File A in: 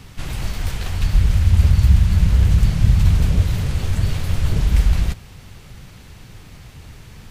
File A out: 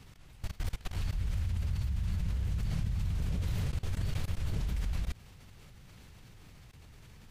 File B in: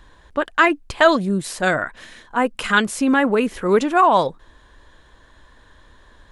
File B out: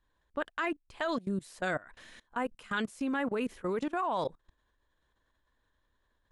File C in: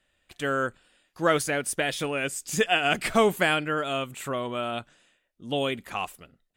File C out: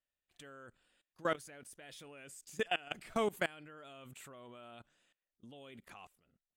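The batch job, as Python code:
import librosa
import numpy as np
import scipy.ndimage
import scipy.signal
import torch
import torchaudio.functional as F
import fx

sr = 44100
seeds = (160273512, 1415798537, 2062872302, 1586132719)

y = fx.level_steps(x, sr, step_db=22)
y = y * librosa.db_to_amplitude(-9.0)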